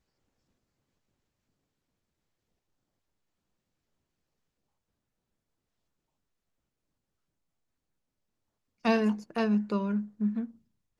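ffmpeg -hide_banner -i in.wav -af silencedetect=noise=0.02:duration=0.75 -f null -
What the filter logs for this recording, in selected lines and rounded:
silence_start: 0.00
silence_end: 8.85 | silence_duration: 8.85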